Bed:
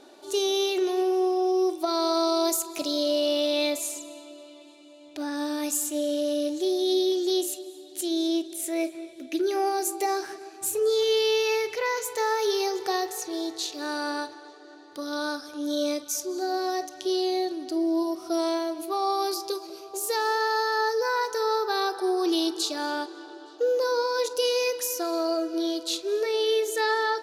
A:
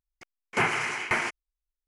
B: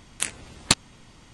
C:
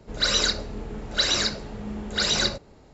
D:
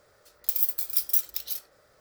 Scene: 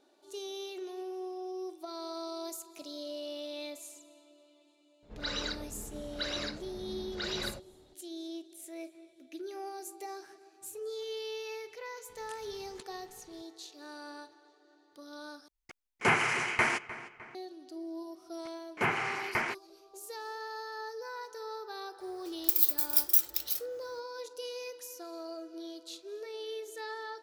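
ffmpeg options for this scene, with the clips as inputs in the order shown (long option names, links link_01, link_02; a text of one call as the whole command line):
ffmpeg -i bed.wav -i cue0.wav -i cue1.wav -i cue2.wav -i cue3.wav -filter_complex "[1:a]asplit=2[link_01][link_02];[0:a]volume=-16dB[link_03];[3:a]lowpass=4100[link_04];[2:a]acompressor=threshold=-35dB:ratio=6:attack=3.2:release=140:knee=1:detection=peak[link_05];[link_01]asplit=2[link_06][link_07];[link_07]adelay=304,lowpass=frequency=3300:poles=1,volume=-15dB,asplit=2[link_08][link_09];[link_09]adelay=304,lowpass=frequency=3300:poles=1,volume=0.5,asplit=2[link_10][link_11];[link_11]adelay=304,lowpass=frequency=3300:poles=1,volume=0.5,asplit=2[link_12][link_13];[link_13]adelay=304,lowpass=frequency=3300:poles=1,volume=0.5,asplit=2[link_14][link_15];[link_15]adelay=304,lowpass=frequency=3300:poles=1,volume=0.5[link_16];[link_06][link_08][link_10][link_12][link_14][link_16]amix=inputs=6:normalize=0[link_17];[link_02]aemphasis=mode=reproduction:type=50kf[link_18];[link_03]asplit=2[link_19][link_20];[link_19]atrim=end=15.484[link_21];[link_17]atrim=end=1.87,asetpts=PTS-STARTPTS,volume=-1dB[link_22];[link_20]atrim=start=17.346[link_23];[link_04]atrim=end=2.93,asetpts=PTS-STARTPTS,volume=-11.5dB,afade=type=in:duration=0.02,afade=type=out:start_time=2.91:duration=0.02,adelay=5020[link_24];[link_05]atrim=end=1.33,asetpts=PTS-STARTPTS,volume=-12.5dB,afade=type=in:duration=0.004:curve=hsin,afade=type=out:start_time=1.326:duration=0.004:curve=hsin,adelay=12090[link_25];[link_18]atrim=end=1.87,asetpts=PTS-STARTPTS,volume=-4dB,afade=type=in:duration=0.004:curve=hsin,afade=type=out:start_time=1.866:duration=0.004:curve=hsin,adelay=18240[link_26];[4:a]atrim=end=2,asetpts=PTS-STARTPTS,volume=-0.5dB,afade=type=in:duration=0.004:curve=hsin,afade=type=out:start_time=1.996:duration=0.004:curve=hsin,adelay=22000[link_27];[link_21][link_22]acrossfade=duration=0.004:curve1=hsin:curve2=hsin[link_28];[link_28][link_23]acrossfade=duration=0.004:curve1=hsin:curve2=hsin[link_29];[link_29][link_24][link_25][link_26][link_27]amix=inputs=5:normalize=0" out.wav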